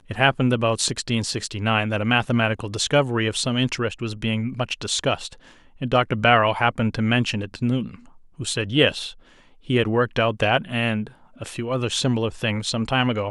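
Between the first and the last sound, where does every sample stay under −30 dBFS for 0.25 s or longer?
0:05.33–0:05.81
0:07.95–0:08.40
0:09.10–0:09.69
0:11.07–0:11.41

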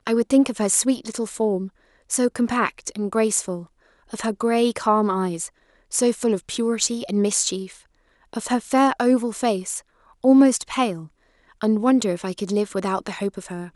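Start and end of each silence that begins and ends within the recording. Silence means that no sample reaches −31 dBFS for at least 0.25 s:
0:01.68–0:02.10
0:03.63–0:04.13
0:05.47–0:05.92
0:07.67–0:08.33
0:09.79–0:10.24
0:11.04–0:11.62

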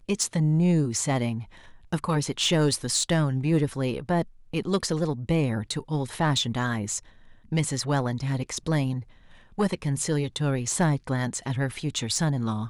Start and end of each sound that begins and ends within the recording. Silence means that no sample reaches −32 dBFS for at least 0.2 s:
0:01.93–0:04.23
0:04.54–0:06.99
0:07.52–0:09.01

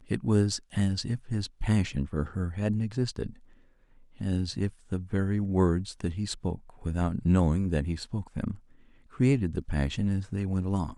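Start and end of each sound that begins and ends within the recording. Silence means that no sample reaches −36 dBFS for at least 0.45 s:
0:04.20–0:08.55

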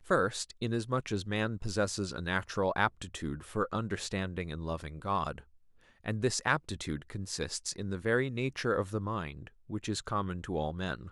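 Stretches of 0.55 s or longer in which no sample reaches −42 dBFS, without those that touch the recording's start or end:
0:05.39–0:06.06

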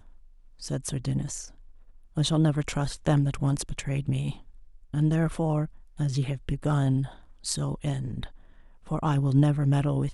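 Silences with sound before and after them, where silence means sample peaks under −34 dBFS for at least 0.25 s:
0:01.45–0:02.17
0:04.33–0:04.94
0:05.66–0:05.99
0:07.08–0:07.45
0:08.26–0:08.89

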